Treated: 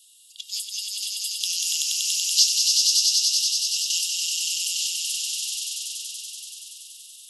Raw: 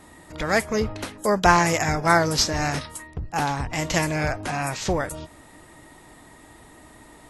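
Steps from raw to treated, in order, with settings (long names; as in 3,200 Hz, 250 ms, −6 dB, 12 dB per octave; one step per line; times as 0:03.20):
Chebyshev high-pass filter 2,800 Hz, order 8
echo that builds up and dies away 95 ms, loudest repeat 5, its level −3.5 dB
every ending faded ahead of time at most 470 dB per second
level +4 dB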